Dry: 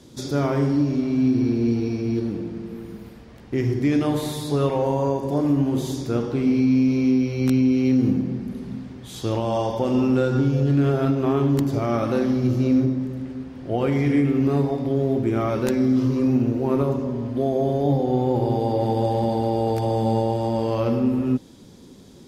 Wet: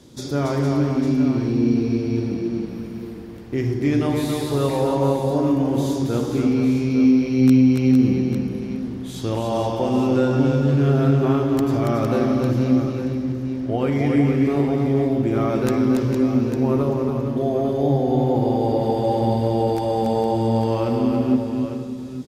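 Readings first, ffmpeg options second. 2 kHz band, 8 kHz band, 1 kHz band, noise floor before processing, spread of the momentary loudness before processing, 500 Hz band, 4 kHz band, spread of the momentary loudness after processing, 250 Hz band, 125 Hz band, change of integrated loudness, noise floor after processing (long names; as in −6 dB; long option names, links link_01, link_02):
+2.0 dB, can't be measured, +2.0 dB, −45 dBFS, 9 LU, +2.0 dB, +2.0 dB, 9 LU, +2.0 dB, +2.0 dB, +1.5 dB, −32 dBFS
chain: -filter_complex "[0:a]asplit=2[link_01][link_02];[link_02]aecho=0:1:280|458|851:0.562|0.398|0.316[link_03];[link_01][link_03]amix=inputs=2:normalize=0"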